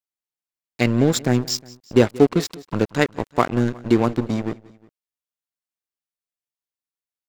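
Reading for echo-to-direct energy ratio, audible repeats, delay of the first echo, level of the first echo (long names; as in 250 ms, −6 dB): −20.5 dB, 2, 180 ms, −21.5 dB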